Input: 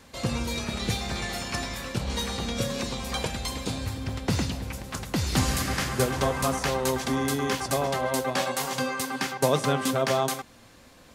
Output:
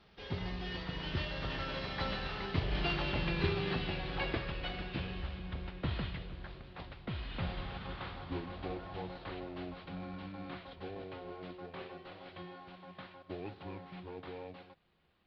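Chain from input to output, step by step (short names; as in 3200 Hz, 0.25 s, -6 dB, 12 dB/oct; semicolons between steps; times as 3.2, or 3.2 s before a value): CVSD 32 kbps; Doppler pass-by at 2.25, 21 m/s, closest 21 m; varispeed -27%; gain -3 dB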